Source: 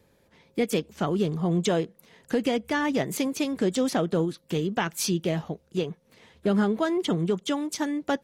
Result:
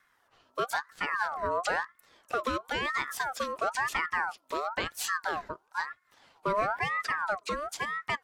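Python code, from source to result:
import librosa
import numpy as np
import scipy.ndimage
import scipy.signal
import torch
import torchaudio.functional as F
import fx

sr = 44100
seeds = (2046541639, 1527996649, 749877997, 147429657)

y = fx.ring_lfo(x, sr, carrier_hz=1200.0, swing_pct=35, hz=1.0)
y = y * 10.0 ** (-3.0 / 20.0)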